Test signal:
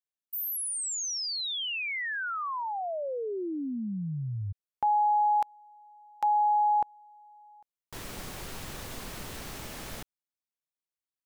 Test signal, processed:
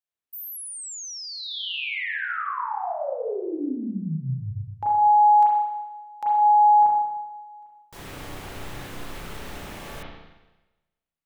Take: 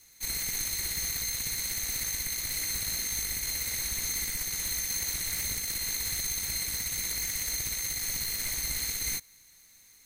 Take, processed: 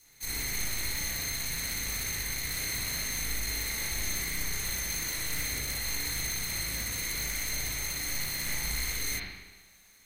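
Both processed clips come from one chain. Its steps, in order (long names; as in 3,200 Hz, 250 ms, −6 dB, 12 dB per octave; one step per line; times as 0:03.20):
spring reverb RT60 1.1 s, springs 31/38 ms, chirp 35 ms, DRR −6 dB
level −3 dB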